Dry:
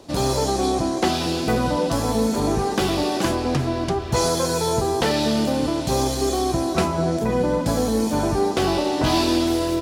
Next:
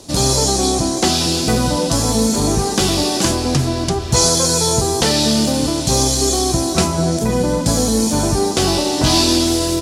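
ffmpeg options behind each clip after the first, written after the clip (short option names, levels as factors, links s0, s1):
-filter_complex "[0:a]lowpass=12000,bass=f=250:g=5,treble=f=4000:g=15,acrossover=split=9300[s0][s1];[s1]acompressor=threshold=0.02:ratio=4:attack=1:release=60[s2];[s0][s2]amix=inputs=2:normalize=0,volume=1.26"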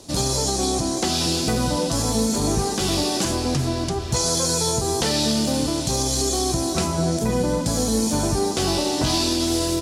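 -af "alimiter=limit=0.447:level=0:latency=1:release=111,volume=0.596"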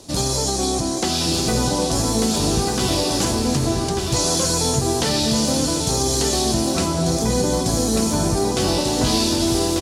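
-af "aecho=1:1:1192:0.562,volume=1.12"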